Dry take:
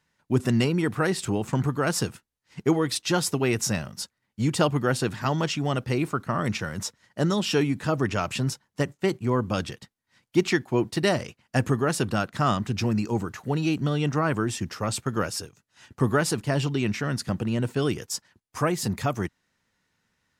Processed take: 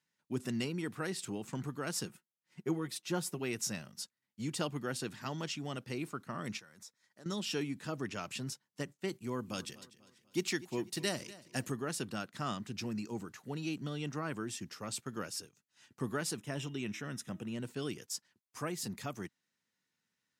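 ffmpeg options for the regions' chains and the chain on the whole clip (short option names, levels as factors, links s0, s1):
-filter_complex "[0:a]asettb=1/sr,asplit=3[s0][s1][s2];[s0]atrim=end=2.054[s3];[s1]atrim=start=2.05:end=3.39,asetpts=PTS-STARTPTS,afade=t=in:d=0.004:c=qsin,afade=t=out:st=1.336:d=0.004:c=qsin,equalizer=f=5000:t=o:w=2:g=-7,aecho=1:1:5.5:0.52,atrim=end_sample=59094[s4];[s2]atrim=start=3.386[s5];[s3][s4]acrossfade=d=0.004:c1=hsin:c2=qsin[s6];[s6][s5]acrossfade=d=0.004:c1=qsin:c2=hsin,asettb=1/sr,asplit=3[s7][s8][s9];[s7]atrim=end=6.594[s10];[s8]atrim=start=6.59:end=7.26,asetpts=PTS-STARTPTS,afade=t=in:d=0.004:c=qsin,afade=t=out:st=0.666:d=0.004:c=qsin,lowshelf=f=380:g=-8.5,bandreject=f=2900:w=6.1,acompressor=threshold=0.00398:ratio=2:attack=3.2:release=140:knee=1:detection=peak[s11];[s9]atrim=start=7.256[s12];[s10][s11]acrossfade=d=0.004:c1=hsin:c2=qsin[s13];[s13][s12]acrossfade=d=0.004:c1=qsin:c2=hsin,asettb=1/sr,asplit=3[s14][s15][s16];[s14]atrim=end=9.124[s17];[s15]atrim=start=9.12:end=11.72,asetpts=PTS-STARTPTS,afade=t=in:d=0.004:c=qsin,afade=t=out:st=2.596:d=0.004:c=qsin,highshelf=f=5900:g=9.5,aecho=1:1:246|492|738|984:0.126|0.0541|0.0233|0.01,atrim=end_sample=114660[s18];[s16]atrim=start=11.716[s19];[s17][s18]acrossfade=d=0.004:c1=hsin:c2=qsin[s20];[s20][s19]acrossfade=d=0.004:c1=qsin:c2=hsin,asettb=1/sr,asplit=3[s21][s22][s23];[s21]atrim=end=16.374[s24];[s22]atrim=start=16.37:end=17.55,asetpts=PTS-STARTPTS,afade=t=in:d=0.004:c=qsin,afade=t=out:st=1.176:d=0.004:c=qsin,asuperstop=centerf=4500:order=4:qfactor=4.6,bandreject=f=316.5:t=h:w=4,bandreject=f=633:t=h:w=4,bandreject=f=949.5:t=h:w=4,bandreject=f=1266:t=h:w=4,bandreject=f=1582.5:t=h:w=4,bandreject=f=1899:t=h:w=4,bandreject=f=2215.5:t=h:w=4,bandreject=f=2532:t=h:w=4,bandreject=f=2848.5:t=h:w=4,bandreject=f=3165:t=h:w=4,bandreject=f=3481.5:t=h:w=4[s25];[s23]atrim=start=17.546[s26];[s24][s25]acrossfade=d=0.004:c1=hsin:c2=qsin[s27];[s27][s26]acrossfade=d=0.004:c1=qsin:c2=hsin,highpass=190,equalizer=f=760:w=0.43:g=-7.5,volume=0.398"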